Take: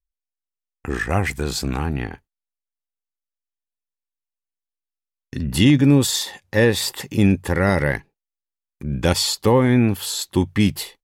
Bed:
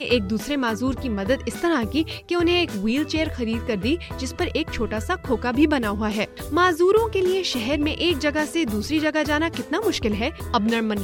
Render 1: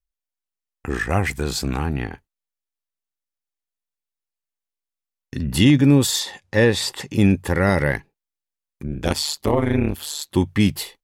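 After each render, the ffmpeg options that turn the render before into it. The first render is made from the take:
-filter_complex "[0:a]asettb=1/sr,asplit=3[a][b][c];[a]atrim=end=6.204[d];[b]atrim=start=6.2:end=7.16,asetpts=PTS-STARTPTS,afade=t=in:d=0.004:c=qsin,afade=t=out:st=0.956:d=0.004:c=qsin,lowpass=9.1k[e];[c]atrim=start=7.156[f];[d][e]acrossfade=d=0.004:c1=hsin:c2=qsin[g];[g][f]acrossfade=d=0.004:c1=qsin:c2=hsin,asettb=1/sr,asplit=3[h][i][j];[h]atrim=end=8.874[k];[i]atrim=start=8.87:end=10.32,asetpts=PTS-STARTPTS,afade=t=in:d=0.004:c=qsin,afade=t=out:st=1.446:d=0.004:c=qsin,tremolo=f=150:d=0.947[l];[j]atrim=start=10.316[m];[k][l]acrossfade=d=0.004:c1=hsin:c2=qsin[n];[n][m]acrossfade=d=0.004:c1=qsin:c2=hsin"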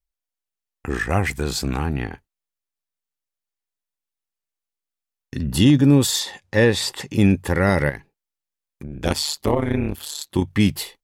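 -filter_complex "[0:a]asettb=1/sr,asplit=3[a][b][c];[a]atrim=end=5.434[d];[b]atrim=start=5.43:end=5.93,asetpts=PTS-STARTPTS,afade=t=in:d=0.004:c=qsin,afade=t=out:st=0.496:d=0.004:c=qsin,equalizer=f=2.2k:t=o:w=0.43:g=-9[e];[c]atrim=start=5.926[f];[d][e]acrossfade=d=0.004:c1=hsin:c2=qsin[g];[g][f]acrossfade=d=0.004:c1=qsin:c2=hsin,asettb=1/sr,asplit=3[h][i][j];[h]atrim=end=7.894[k];[i]atrim=start=7.89:end=9.02,asetpts=PTS-STARTPTS,afade=t=in:d=0.004:c=qsin,afade=t=out:st=1.126:d=0.004:c=qsin,acompressor=threshold=-30dB:ratio=2.5:attack=3.2:release=140:knee=1:detection=peak[l];[j]atrim=start=9.016[m];[k][l]acrossfade=d=0.004:c1=hsin:c2=qsin[n];[n][m]acrossfade=d=0.004:c1=qsin:c2=hsin,asettb=1/sr,asplit=3[o][p][q];[o]atrim=end=9.544[r];[p]atrim=start=9.54:end=10.53,asetpts=PTS-STARTPTS,afade=t=in:d=0.004:c=qsin,afade=t=out:st=0.986:d=0.004:c=qsin,tremolo=f=34:d=0.462[s];[q]atrim=start=10.526[t];[r][s]acrossfade=d=0.004:c1=hsin:c2=qsin[u];[u][t]acrossfade=d=0.004:c1=qsin:c2=hsin"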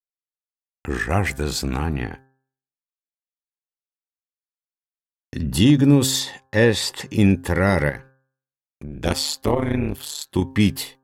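-af "agate=range=-33dB:threshold=-39dB:ratio=3:detection=peak,bandreject=f=132.7:t=h:w=4,bandreject=f=265.4:t=h:w=4,bandreject=f=398.1:t=h:w=4,bandreject=f=530.8:t=h:w=4,bandreject=f=663.5:t=h:w=4,bandreject=f=796.2:t=h:w=4,bandreject=f=928.9:t=h:w=4,bandreject=f=1.0616k:t=h:w=4,bandreject=f=1.1943k:t=h:w=4,bandreject=f=1.327k:t=h:w=4,bandreject=f=1.4597k:t=h:w=4,bandreject=f=1.5924k:t=h:w=4,bandreject=f=1.7251k:t=h:w=4"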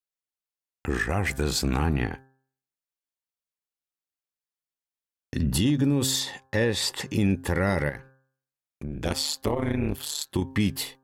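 -af "alimiter=limit=-14.5dB:level=0:latency=1:release=247"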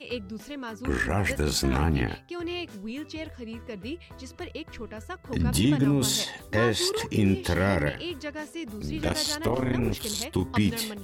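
-filter_complex "[1:a]volume=-13.5dB[a];[0:a][a]amix=inputs=2:normalize=0"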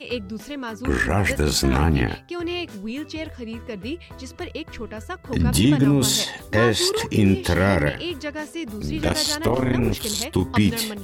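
-af "volume=5.5dB"

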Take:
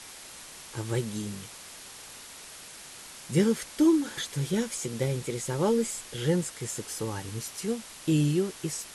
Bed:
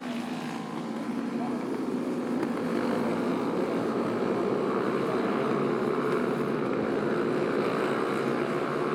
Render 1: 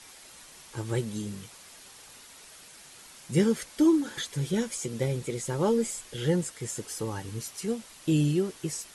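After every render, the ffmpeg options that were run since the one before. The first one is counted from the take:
-af "afftdn=nr=6:nf=-46"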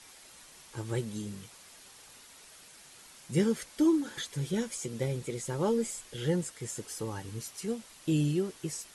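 -af "volume=-3.5dB"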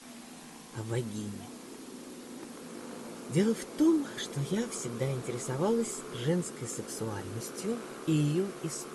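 -filter_complex "[1:a]volume=-16dB[a];[0:a][a]amix=inputs=2:normalize=0"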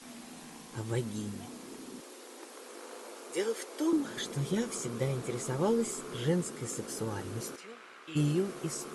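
-filter_complex "[0:a]asettb=1/sr,asplit=3[a][b][c];[a]atrim=end=2.004[d];[b]atrim=start=2:end=3.93,asetpts=PTS-STARTPTS,afade=t=in:d=0.004:c=qsin,afade=t=out:st=1.926:d=0.004:c=qsin,highpass=f=370:w=0.5412,highpass=f=370:w=1.3066[e];[c]atrim=start=3.926[f];[d][e]acrossfade=d=0.004:c1=hsin:c2=qsin[g];[g][f]acrossfade=d=0.004:c1=qsin:c2=hsin,asplit=3[h][i][j];[h]afade=t=out:st=7.55:d=0.02[k];[i]bandpass=f=2.1k:t=q:w=1.2,afade=t=in:st=7.55:d=0.02,afade=t=out:st=8.15:d=0.02[l];[j]afade=t=in:st=8.15:d=0.02[m];[k][l][m]amix=inputs=3:normalize=0"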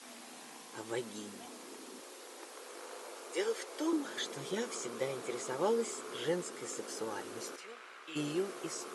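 -filter_complex "[0:a]highpass=380,acrossover=split=7600[a][b];[b]acompressor=threshold=-55dB:ratio=4:attack=1:release=60[c];[a][c]amix=inputs=2:normalize=0"

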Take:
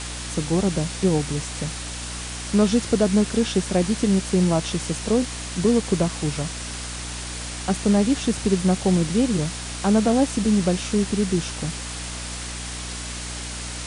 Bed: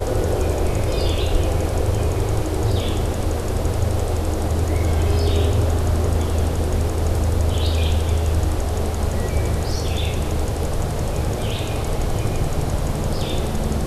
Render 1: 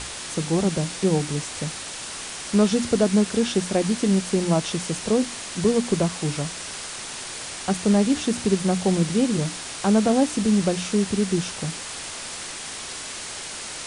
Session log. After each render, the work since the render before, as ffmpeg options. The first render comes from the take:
-af "bandreject=f=60:t=h:w=6,bandreject=f=120:t=h:w=6,bandreject=f=180:t=h:w=6,bandreject=f=240:t=h:w=6,bandreject=f=300:t=h:w=6"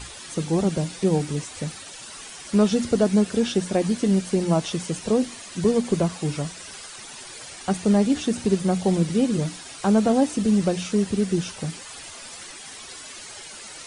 -af "afftdn=nr=11:nf=-35"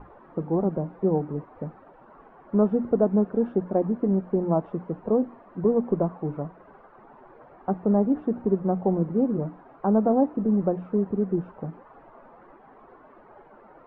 -af "lowpass=f=1.1k:w=0.5412,lowpass=f=1.1k:w=1.3066,equalizer=f=79:w=0.84:g=-12.5"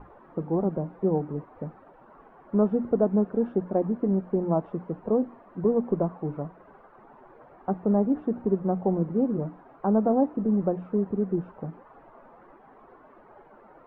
-af "volume=-1.5dB"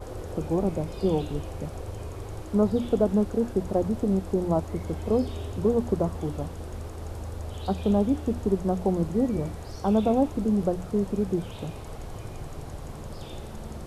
-filter_complex "[1:a]volume=-16.5dB[a];[0:a][a]amix=inputs=2:normalize=0"

